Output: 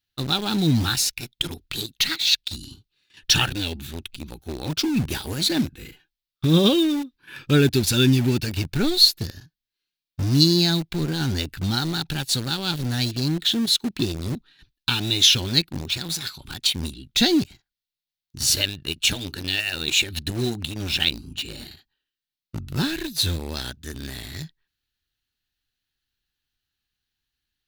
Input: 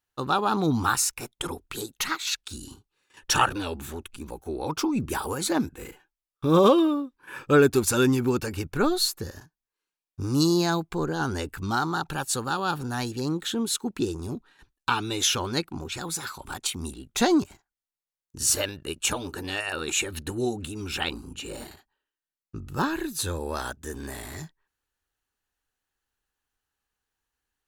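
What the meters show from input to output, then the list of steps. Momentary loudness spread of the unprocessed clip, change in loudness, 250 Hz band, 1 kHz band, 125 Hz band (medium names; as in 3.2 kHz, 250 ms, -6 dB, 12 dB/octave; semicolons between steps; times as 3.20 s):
16 LU, +4.5 dB, +3.0 dB, -7.5 dB, +7.5 dB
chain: graphic EQ 125/500/1000/4000/8000 Hz +4/-9/-11/+10/-9 dB; in parallel at -7 dB: bit crusher 5-bit; on the sum: dynamic bell 1.2 kHz, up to -8 dB, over -47 dBFS, Q 3; trim +2 dB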